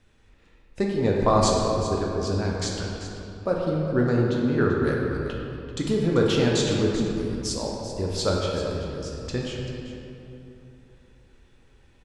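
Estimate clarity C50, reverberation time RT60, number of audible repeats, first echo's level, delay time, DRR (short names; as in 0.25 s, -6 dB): -0.5 dB, 2.9 s, 1, -11.5 dB, 0.388 s, -2.5 dB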